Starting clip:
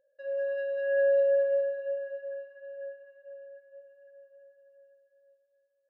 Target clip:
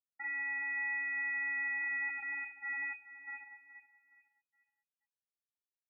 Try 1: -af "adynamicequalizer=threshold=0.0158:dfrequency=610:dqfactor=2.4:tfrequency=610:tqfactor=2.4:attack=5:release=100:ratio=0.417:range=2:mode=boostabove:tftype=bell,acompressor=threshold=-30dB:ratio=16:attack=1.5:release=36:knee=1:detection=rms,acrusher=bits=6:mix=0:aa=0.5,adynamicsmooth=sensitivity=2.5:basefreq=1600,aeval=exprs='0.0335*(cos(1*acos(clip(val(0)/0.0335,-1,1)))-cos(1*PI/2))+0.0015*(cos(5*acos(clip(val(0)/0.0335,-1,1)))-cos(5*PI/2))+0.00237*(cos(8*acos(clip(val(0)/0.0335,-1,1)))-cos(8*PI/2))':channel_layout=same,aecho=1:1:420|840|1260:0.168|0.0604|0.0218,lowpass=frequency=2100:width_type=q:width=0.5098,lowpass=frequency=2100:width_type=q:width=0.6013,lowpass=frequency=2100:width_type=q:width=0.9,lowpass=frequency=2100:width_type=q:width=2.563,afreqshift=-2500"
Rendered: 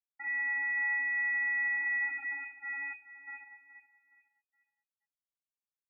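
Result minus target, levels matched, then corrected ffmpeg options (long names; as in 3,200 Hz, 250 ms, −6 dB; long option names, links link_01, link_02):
downward compressor: peak gain reduction −6 dB
-af "adynamicequalizer=threshold=0.0158:dfrequency=610:dqfactor=2.4:tfrequency=610:tqfactor=2.4:attack=5:release=100:ratio=0.417:range=2:mode=boostabove:tftype=bell,acompressor=threshold=-36.5dB:ratio=16:attack=1.5:release=36:knee=1:detection=rms,acrusher=bits=6:mix=0:aa=0.5,adynamicsmooth=sensitivity=2.5:basefreq=1600,aeval=exprs='0.0335*(cos(1*acos(clip(val(0)/0.0335,-1,1)))-cos(1*PI/2))+0.0015*(cos(5*acos(clip(val(0)/0.0335,-1,1)))-cos(5*PI/2))+0.00237*(cos(8*acos(clip(val(0)/0.0335,-1,1)))-cos(8*PI/2))':channel_layout=same,aecho=1:1:420|840|1260:0.168|0.0604|0.0218,lowpass=frequency=2100:width_type=q:width=0.5098,lowpass=frequency=2100:width_type=q:width=0.6013,lowpass=frequency=2100:width_type=q:width=0.9,lowpass=frequency=2100:width_type=q:width=2.563,afreqshift=-2500"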